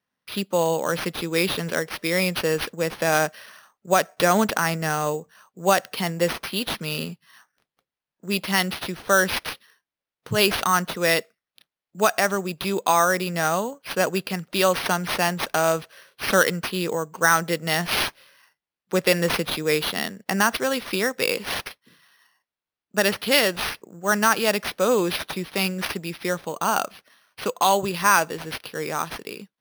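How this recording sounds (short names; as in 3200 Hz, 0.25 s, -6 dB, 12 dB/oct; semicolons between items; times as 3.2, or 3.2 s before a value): aliases and images of a low sample rate 7400 Hz, jitter 0%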